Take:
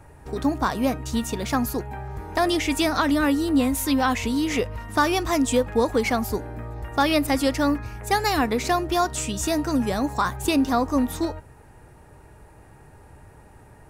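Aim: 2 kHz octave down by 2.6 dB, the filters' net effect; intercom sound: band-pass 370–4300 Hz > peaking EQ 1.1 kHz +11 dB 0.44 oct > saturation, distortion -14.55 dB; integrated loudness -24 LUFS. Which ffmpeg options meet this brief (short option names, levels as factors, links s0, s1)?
-af "highpass=370,lowpass=4300,equalizer=f=1100:t=o:w=0.44:g=11,equalizer=f=2000:t=o:g=-5.5,asoftclip=threshold=0.211,volume=1.19"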